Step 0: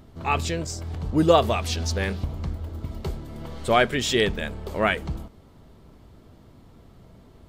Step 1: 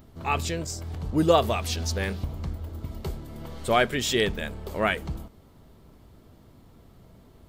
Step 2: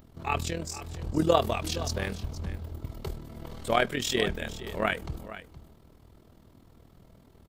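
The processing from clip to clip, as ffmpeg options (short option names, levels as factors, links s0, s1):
-af "highshelf=f=12000:g=11.5,volume=0.75"
-af "tremolo=f=40:d=0.75,aecho=1:1:468:0.188"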